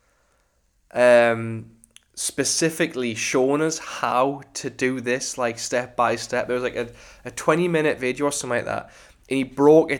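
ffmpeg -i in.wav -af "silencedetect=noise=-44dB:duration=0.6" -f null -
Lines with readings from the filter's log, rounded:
silence_start: 0.00
silence_end: 0.91 | silence_duration: 0.91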